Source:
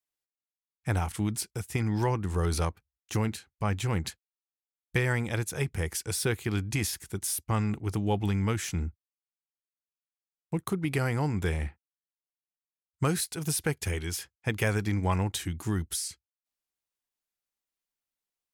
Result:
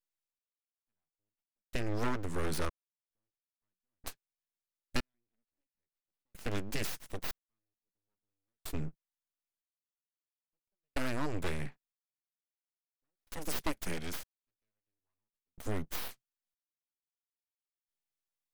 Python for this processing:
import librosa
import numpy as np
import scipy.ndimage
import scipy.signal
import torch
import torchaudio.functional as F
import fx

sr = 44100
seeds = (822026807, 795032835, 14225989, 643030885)

y = fx.low_shelf(x, sr, hz=290.0, db=11.5, at=(5.14, 5.61))
y = np.abs(y)
y = fx.step_gate(y, sr, bpm=78, pattern='xx.......xxx', floor_db=-60.0, edge_ms=4.5)
y = y * librosa.db_to_amplitude(-3.0)